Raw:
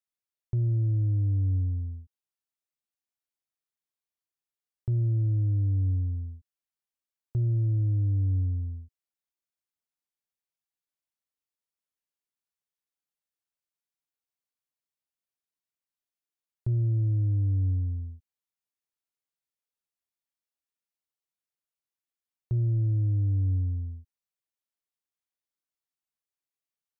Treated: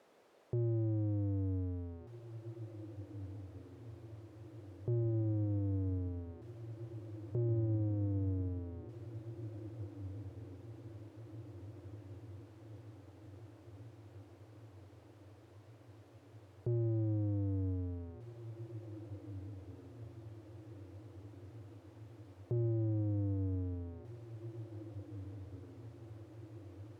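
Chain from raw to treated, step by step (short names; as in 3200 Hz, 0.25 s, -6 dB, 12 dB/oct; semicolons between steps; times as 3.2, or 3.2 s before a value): zero-crossing step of -46.5 dBFS; band-pass 470 Hz, Q 1.8; on a send: diffused feedback echo 1.885 s, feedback 65%, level -12 dB; on the sum: gain +7 dB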